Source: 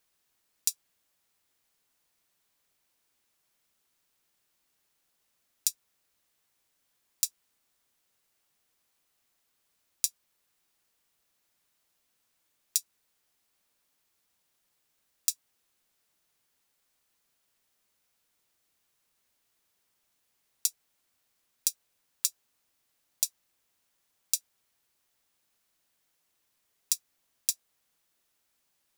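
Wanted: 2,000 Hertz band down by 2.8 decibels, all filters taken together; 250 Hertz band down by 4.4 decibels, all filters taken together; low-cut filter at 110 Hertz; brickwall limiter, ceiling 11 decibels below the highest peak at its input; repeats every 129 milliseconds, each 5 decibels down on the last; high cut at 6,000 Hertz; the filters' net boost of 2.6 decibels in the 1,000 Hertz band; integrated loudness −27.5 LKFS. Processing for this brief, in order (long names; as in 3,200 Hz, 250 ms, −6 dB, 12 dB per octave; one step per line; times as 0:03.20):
high-pass filter 110 Hz
low-pass filter 6,000 Hz
parametric band 250 Hz −6 dB
parametric band 1,000 Hz +5 dB
parametric band 2,000 Hz −5 dB
brickwall limiter −21.5 dBFS
repeating echo 129 ms, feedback 56%, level −5 dB
level +21 dB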